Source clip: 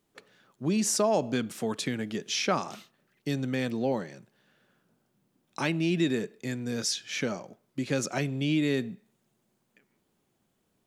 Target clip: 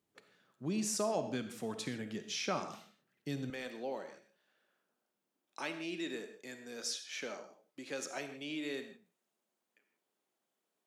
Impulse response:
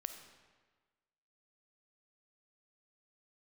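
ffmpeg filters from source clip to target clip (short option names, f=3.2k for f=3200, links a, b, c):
-filter_complex "[0:a]asetnsamples=n=441:p=0,asendcmd='3.5 highpass f 400',highpass=46[a];[1:a]atrim=start_sample=2205,afade=t=out:st=0.22:d=0.01,atrim=end_sample=10143[b];[a][b]afir=irnorm=-1:irlink=0,volume=-6dB"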